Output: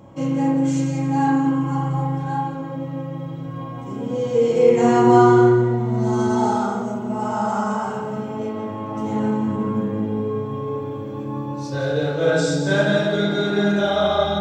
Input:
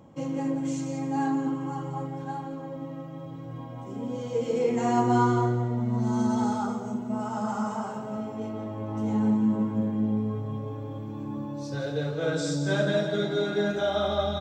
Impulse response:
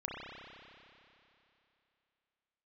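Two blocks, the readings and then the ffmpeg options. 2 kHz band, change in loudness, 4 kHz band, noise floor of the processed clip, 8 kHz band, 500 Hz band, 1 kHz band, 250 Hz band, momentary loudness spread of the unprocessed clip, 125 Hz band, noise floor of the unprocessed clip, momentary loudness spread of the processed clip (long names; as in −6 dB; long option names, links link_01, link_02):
+9.5 dB, +8.0 dB, +7.0 dB, −30 dBFS, +6.0 dB, +10.0 dB, +8.5 dB, +6.5 dB, 12 LU, +7.0 dB, −39 dBFS, 14 LU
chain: -filter_complex "[1:a]atrim=start_sample=2205,atrim=end_sample=4410[link_01];[0:a][link_01]afir=irnorm=-1:irlink=0,volume=9dB"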